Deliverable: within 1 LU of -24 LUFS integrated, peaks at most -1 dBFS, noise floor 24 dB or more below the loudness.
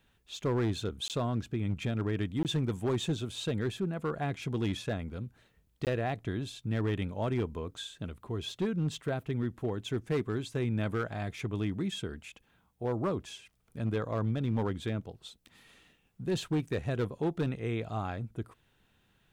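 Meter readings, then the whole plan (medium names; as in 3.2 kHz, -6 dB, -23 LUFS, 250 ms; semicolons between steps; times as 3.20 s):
clipped samples 1.7%; clipping level -24.5 dBFS; dropouts 3; longest dropout 18 ms; loudness -34.0 LUFS; peak level -24.5 dBFS; loudness target -24.0 LUFS
-> clip repair -24.5 dBFS; interpolate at 1.08/2.43/5.85 s, 18 ms; trim +10 dB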